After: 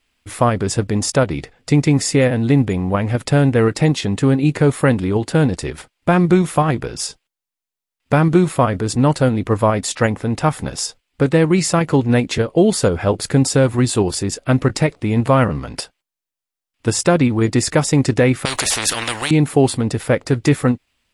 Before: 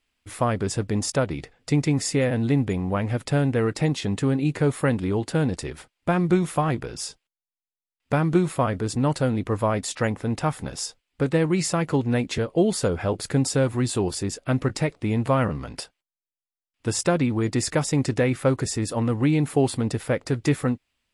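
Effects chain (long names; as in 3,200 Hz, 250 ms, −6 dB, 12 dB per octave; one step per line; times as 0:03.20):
in parallel at −1.5 dB: output level in coarse steps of 11 dB
0:18.45–0:19.31: on the sum: every bin compressed towards the loudest bin 10 to 1
level +3.5 dB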